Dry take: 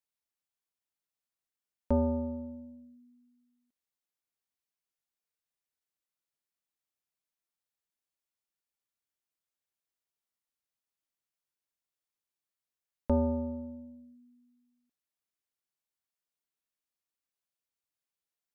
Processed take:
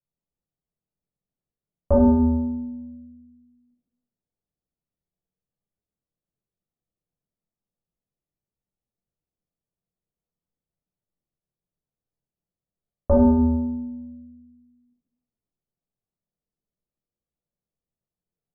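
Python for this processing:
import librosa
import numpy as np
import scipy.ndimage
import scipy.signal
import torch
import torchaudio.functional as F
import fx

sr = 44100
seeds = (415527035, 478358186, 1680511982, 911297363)

y = fx.env_lowpass(x, sr, base_hz=440.0, full_db=-34.0)
y = fx.room_shoebox(y, sr, seeds[0], volume_m3=940.0, walls='furnished', distance_m=6.0)
y = y * librosa.db_to_amplitude(4.5)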